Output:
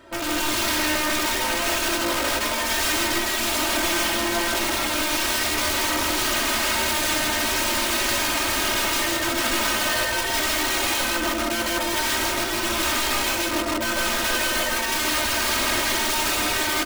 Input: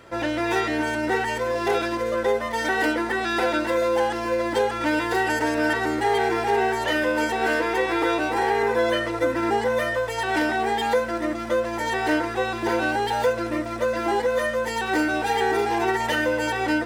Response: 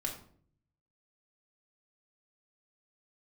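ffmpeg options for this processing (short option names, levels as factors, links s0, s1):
-af "aeval=exprs='(mod(11.2*val(0)+1,2)-1)/11.2':c=same,aecho=1:1:3.2:0.88,aecho=1:1:99.13|160.3:0.501|1,volume=0.708"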